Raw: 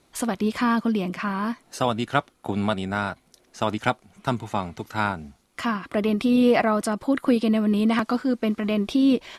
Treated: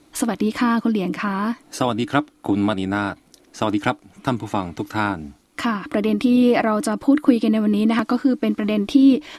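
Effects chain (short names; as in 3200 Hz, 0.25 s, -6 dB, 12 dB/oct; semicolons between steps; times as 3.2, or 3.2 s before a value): bell 300 Hz +15 dB 0.21 oct; in parallel at -0.5 dB: compressor, threshold -26 dBFS, peak gain reduction 16.5 dB; on the sum: gain -1 dB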